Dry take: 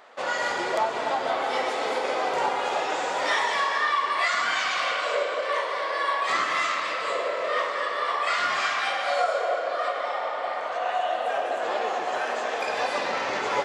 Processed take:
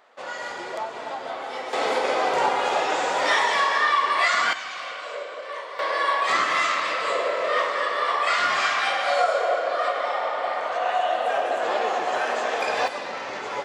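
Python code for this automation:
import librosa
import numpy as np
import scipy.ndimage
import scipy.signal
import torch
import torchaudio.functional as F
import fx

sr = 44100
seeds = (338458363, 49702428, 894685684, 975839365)

y = fx.gain(x, sr, db=fx.steps((0.0, -6.0), (1.73, 3.5), (4.53, -7.5), (5.79, 3.0), (12.88, -4.5)))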